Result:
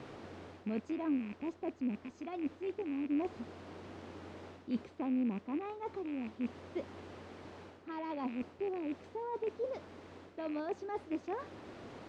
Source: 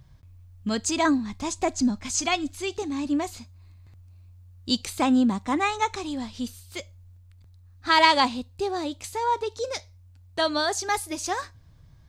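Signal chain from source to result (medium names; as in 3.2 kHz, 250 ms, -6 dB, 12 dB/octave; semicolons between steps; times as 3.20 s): rattle on loud lows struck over -37 dBFS, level -13 dBFS; word length cut 6-bit, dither triangular; reverse; compression 12:1, threshold -29 dBFS, peak gain reduction 17.5 dB; reverse; distance through air 96 m; valve stage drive 24 dB, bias 0.35; gain riding 2 s; band-pass filter 320 Hz, Q 1.2; trim +2.5 dB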